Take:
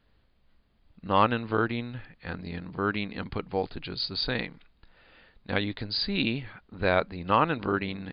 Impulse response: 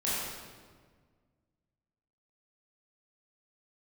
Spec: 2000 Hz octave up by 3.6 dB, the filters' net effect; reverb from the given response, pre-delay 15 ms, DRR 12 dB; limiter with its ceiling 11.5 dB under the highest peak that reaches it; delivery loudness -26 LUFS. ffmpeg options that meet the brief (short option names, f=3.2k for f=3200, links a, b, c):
-filter_complex "[0:a]equalizer=f=2k:t=o:g=5,alimiter=limit=-18.5dB:level=0:latency=1,asplit=2[a][b];[1:a]atrim=start_sample=2205,adelay=15[c];[b][c]afir=irnorm=-1:irlink=0,volume=-20dB[d];[a][d]amix=inputs=2:normalize=0,volume=5.5dB"